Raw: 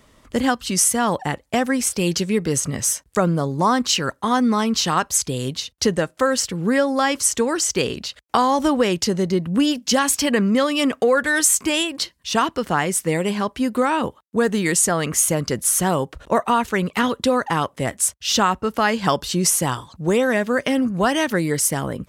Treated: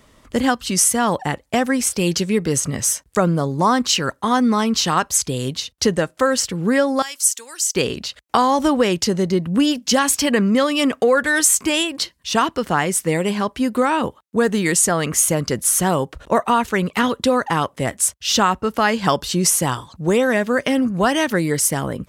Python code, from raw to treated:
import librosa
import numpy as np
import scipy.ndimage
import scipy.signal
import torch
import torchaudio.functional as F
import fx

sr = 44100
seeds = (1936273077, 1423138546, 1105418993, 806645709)

y = fx.differentiator(x, sr, at=(7.02, 7.75))
y = F.gain(torch.from_numpy(y), 1.5).numpy()